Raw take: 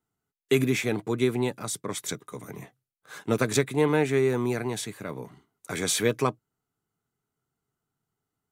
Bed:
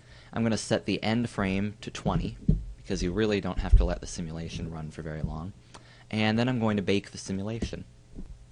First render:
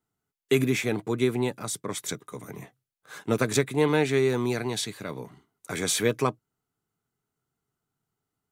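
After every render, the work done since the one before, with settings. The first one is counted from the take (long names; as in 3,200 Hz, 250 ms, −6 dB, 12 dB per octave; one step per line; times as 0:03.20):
0:03.81–0:05.23: parametric band 4,200 Hz +7.5 dB 1 octave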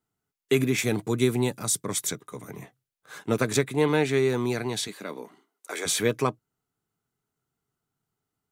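0:00.78–0:02.09: bass and treble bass +4 dB, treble +8 dB
0:04.87–0:05.85: high-pass filter 170 Hz → 380 Hz 24 dB per octave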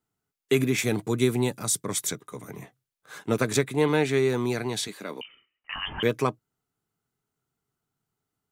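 0:05.21–0:06.03: voice inversion scrambler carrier 3,300 Hz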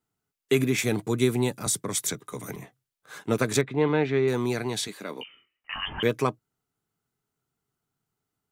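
0:01.66–0:02.56: multiband upward and downward compressor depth 70%
0:03.61–0:04.28: high-frequency loss of the air 250 metres
0:05.17–0:05.85: double-tracking delay 23 ms −8 dB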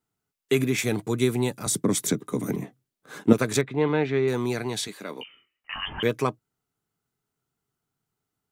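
0:01.71–0:03.33: parametric band 250 Hz +14 dB 1.8 octaves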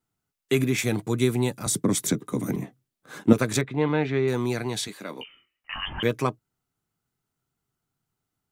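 low-shelf EQ 82 Hz +6.5 dB
notch filter 430 Hz, Q 12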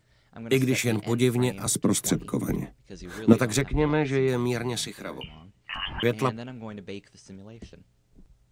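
mix in bed −12 dB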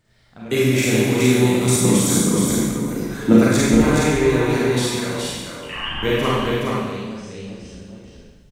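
single-tap delay 420 ms −3.5 dB
four-comb reverb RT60 1.2 s, combs from 32 ms, DRR −6 dB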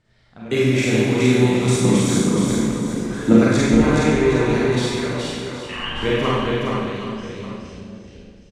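high-frequency loss of the air 67 metres
single-tap delay 767 ms −12.5 dB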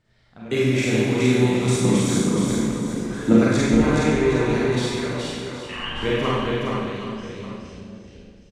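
level −2.5 dB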